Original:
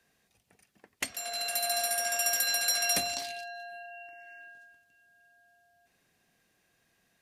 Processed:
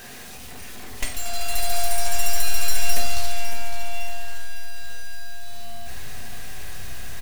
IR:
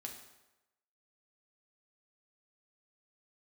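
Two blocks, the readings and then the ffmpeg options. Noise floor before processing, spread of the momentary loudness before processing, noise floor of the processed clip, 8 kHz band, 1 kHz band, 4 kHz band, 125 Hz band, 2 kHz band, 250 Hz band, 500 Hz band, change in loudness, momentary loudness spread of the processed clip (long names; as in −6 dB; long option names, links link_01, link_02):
−73 dBFS, 19 LU, −38 dBFS, +2.5 dB, +5.0 dB, +1.0 dB, +24.0 dB, +2.5 dB, +6.5 dB, +4.5 dB, −1.0 dB, 15 LU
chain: -filter_complex "[0:a]aeval=exprs='val(0)+0.5*0.0282*sgn(val(0))':channel_layout=same,aeval=exprs='0.2*(cos(1*acos(clip(val(0)/0.2,-1,1)))-cos(1*PI/2))+0.0398*(cos(8*acos(clip(val(0)/0.2,-1,1)))-cos(8*PI/2))':channel_layout=same,asplit=2[link_01][link_02];[link_02]acrusher=bits=4:mix=0:aa=0.000001,volume=-7dB[link_03];[link_01][link_03]amix=inputs=2:normalize=0,aecho=1:1:557|1114|1671|2228|2785:0.282|0.132|0.0623|0.0293|0.0138[link_04];[1:a]atrim=start_sample=2205,afade=type=out:start_time=0.14:duration=0.01,atrim=end_sample=6615[link_05];[link_04][link_05]afir=irnorm=-1:irlink=0,asubboost=boost=12:cutoff=69"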